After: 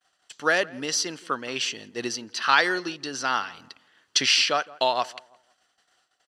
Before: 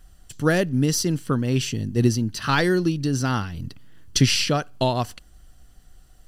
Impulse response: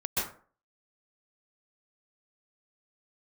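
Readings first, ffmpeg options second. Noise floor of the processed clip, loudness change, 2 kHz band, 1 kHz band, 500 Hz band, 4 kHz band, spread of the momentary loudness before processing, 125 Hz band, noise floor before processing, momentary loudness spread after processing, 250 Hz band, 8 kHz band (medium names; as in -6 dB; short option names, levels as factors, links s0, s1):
-72 dBFS, -2.0 dB, +4.0 dB, +2.5 dB, -4.0 dB, +2.5 dB, 8 LU, -25.5 dB, -51 dBFS, 12 LU, -13.5 dB, -1.0 dB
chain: -filter_complex "[0:a]agate=range=0.0224:threshold=0.00794:ratio=3:detection=peak,highpass=750,lowpass=5200,asplit=2[s0][s1];[s1]adelay=168,lowpass=f=1400:p=1,volume=0.1,asplit=2[s2][s3];[s3]adelay=168,lowpass=f=1400:p=1,volume=0.33,asplit=2[s4][s5];[s5]adelay=168,lowpass=f=1400:p=1,volume=0.33[s6];[s2][s4][s6]amix=inputs=3:normalize=0[s7];[s0][s7]amix=inputs=2:normalize=0,volume=1.58"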